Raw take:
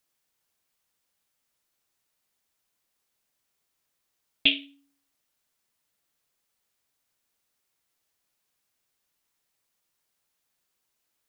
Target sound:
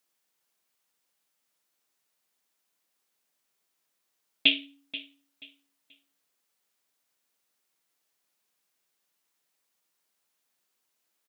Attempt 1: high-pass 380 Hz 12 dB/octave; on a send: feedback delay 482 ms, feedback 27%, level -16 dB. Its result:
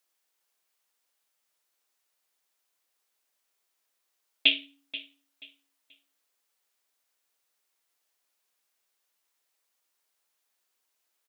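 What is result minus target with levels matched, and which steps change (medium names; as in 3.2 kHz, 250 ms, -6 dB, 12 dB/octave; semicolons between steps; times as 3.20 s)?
250 Hz band -5.5 dB
change: high-pass 180 Hz 12 dB/octave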